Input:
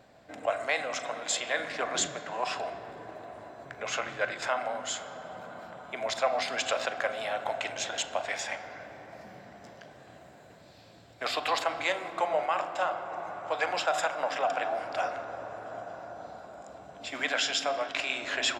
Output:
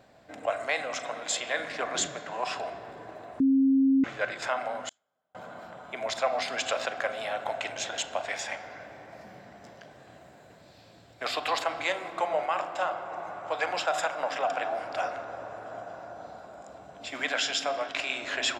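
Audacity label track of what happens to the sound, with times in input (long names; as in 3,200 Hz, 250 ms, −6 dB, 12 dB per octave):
3.400000	4.040000	beep over 269 Hz −18.5 dBFS
4.890000	5.350000	noise gate −29 dBFS, range −39 dB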